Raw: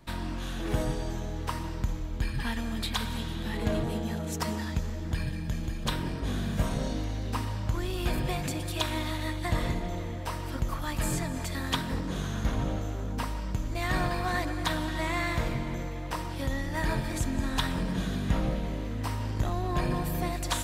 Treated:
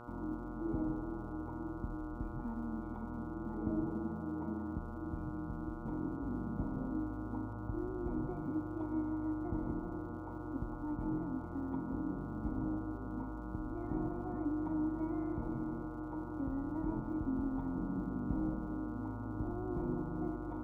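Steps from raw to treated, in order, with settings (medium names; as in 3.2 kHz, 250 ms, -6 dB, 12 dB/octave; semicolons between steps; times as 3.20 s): cascade formant filter u; crackle 350 per s -66 dBFS; mains buzz 120 Hz, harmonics 12, -53 dBFS -1 dB/octave; trim +2 dB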